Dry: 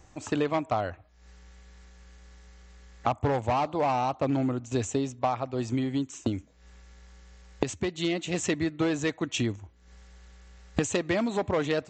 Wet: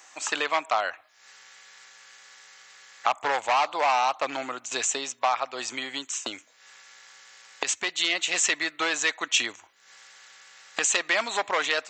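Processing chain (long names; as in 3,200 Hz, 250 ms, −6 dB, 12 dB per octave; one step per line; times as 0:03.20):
high-pass filter 1,200 Hz 12 dB per octave
in parallel at −1 dB: brickwall limiter −26.5 dBFS, peak gain reduction 9.5 dB
on the sum: level +6.5 dB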